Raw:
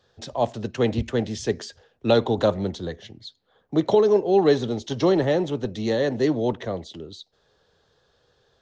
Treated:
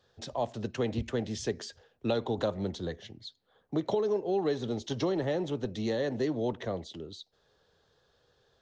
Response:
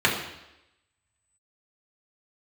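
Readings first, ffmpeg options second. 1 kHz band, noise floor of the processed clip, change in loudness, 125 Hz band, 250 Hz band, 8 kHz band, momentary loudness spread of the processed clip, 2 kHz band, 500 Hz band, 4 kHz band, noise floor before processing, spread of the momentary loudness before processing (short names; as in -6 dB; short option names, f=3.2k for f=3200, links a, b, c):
-9.5 dB, -71 dBFS, -9.5 dB, -8.0 dB, -8.5 dB, n/a, 14 LU, -8.5 dB, -10.0 dB, -7.5 dB, -67 dBFS, 17 LU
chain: -af "acompressor=threshold=-23dB:ratio=3,volume=-4.5dB"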